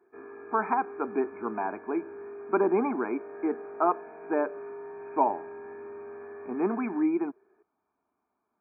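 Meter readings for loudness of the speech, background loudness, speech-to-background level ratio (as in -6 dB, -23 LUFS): -30.0 LUFS, -43.0 LUFS, 13.0 dB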